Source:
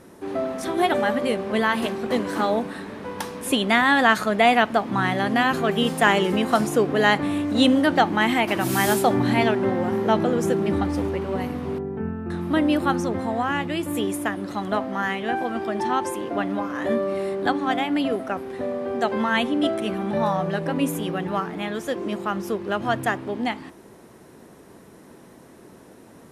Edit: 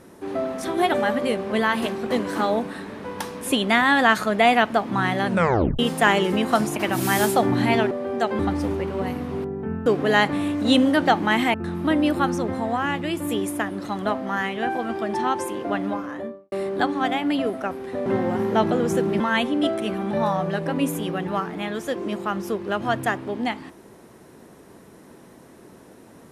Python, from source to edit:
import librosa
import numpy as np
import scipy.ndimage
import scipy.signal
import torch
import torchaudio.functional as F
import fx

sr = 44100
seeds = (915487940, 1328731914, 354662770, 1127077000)

y = fx.studio_fade_out(x, sr, start_s=16.52, length_s=0.66)
y = fx.edit(y, sr, fx.tape_stop(start_s=5.26, length_s=0.53),
    fx.move(start_s=6.76, length_s=1.68, to_s=12.2),
    fx.swap(start_s=9.59, length_s=1.14, other_s=18.72, other_length_s=0.48), tone=tone)